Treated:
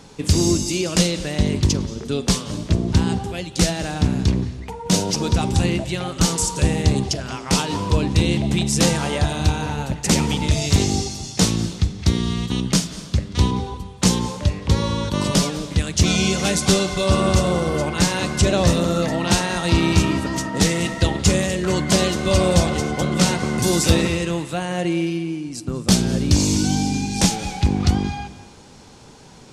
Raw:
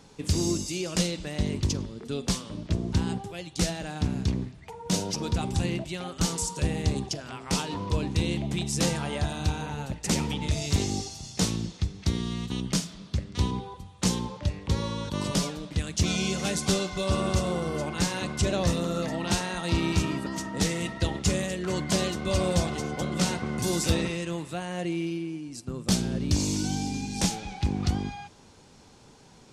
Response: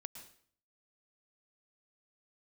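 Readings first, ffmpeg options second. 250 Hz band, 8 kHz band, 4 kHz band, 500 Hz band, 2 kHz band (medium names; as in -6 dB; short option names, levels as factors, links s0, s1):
+8.5 dB, +9.0 dB, +9.0 dB, +9.0 dB, +9.0 dB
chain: -filter_complex "[0:a]asplit=2[s0][s1];[1:a]atrim=start_sample=2205,asetrate=26460,aresample=44100[s2];[s1][s2]afir=irnorm=-1:irlink=0,volume=0.596[s3];[s0][s3]amix=inputs=2:normalize=0,volume=1.88"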